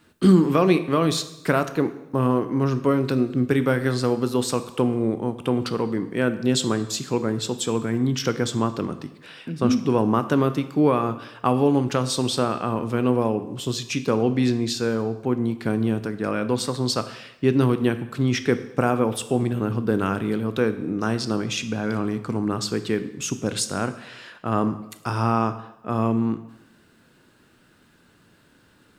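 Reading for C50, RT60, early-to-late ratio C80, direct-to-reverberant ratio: 13.0 dB, 0.90 s, 15.0 dB, 10.5 dB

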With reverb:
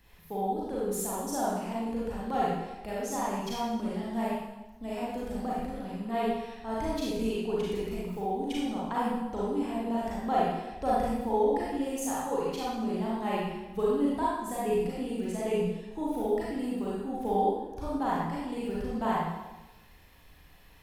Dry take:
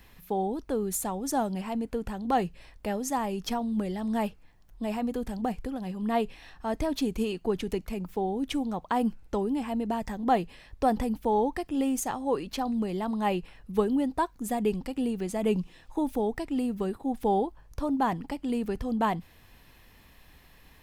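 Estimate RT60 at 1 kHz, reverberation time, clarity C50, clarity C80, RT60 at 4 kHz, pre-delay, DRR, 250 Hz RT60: 1.1 s, 1.1 s, −3.0 dB, 1.0 dB, 0.95 s, 32 ms, −7.0 dB, 1.1 s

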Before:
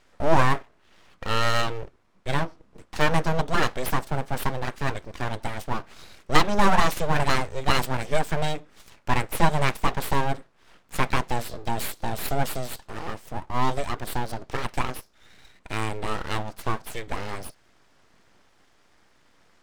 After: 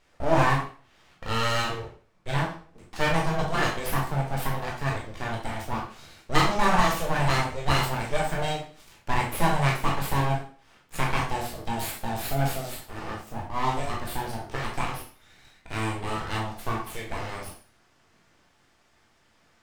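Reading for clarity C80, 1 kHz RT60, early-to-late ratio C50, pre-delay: 10.5 dB, 0.40 s, 5.5 dB, 7 ms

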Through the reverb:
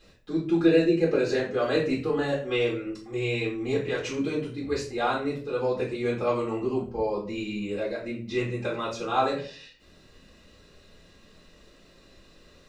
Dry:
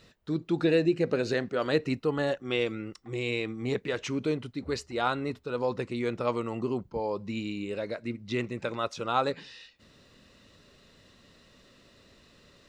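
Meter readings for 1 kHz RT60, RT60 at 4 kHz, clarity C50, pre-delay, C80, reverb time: 0.35 s, 0.30 s, 7.5 dB, 3 ms, 12.5 dB, 0.45 s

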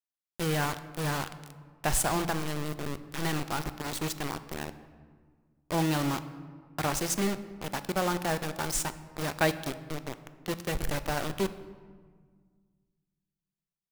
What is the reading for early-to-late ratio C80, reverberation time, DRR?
15.0 dB, 1.7 s, 11.5 dB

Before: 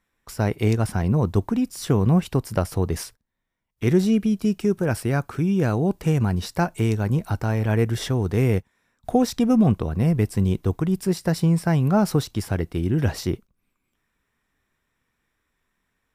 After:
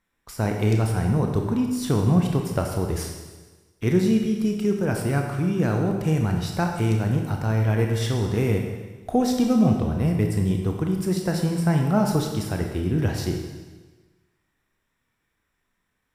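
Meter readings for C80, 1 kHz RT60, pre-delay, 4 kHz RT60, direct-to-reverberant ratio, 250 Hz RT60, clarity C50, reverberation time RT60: 6.0 dB, 1.3 s, 28 ms, 1.3 s, 2.5 dB, 1.3 s, 4.0 dB, 1.3 s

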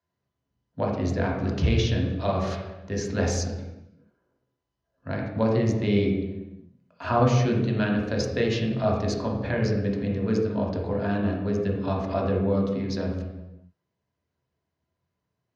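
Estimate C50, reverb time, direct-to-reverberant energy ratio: 2.5 dB, 1.0 s, −1.5 dB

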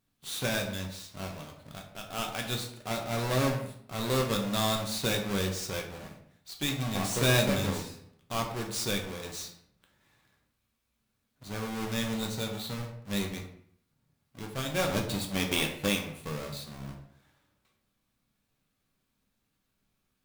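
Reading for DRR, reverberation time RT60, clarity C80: 1.0 dB, 0.65 s, 10.0 dB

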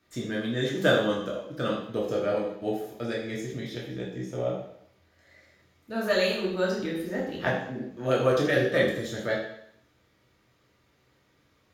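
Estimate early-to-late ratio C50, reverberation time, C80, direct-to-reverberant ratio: 3.5 dB, 0.70 s, 7.0 dB, −4.5 dB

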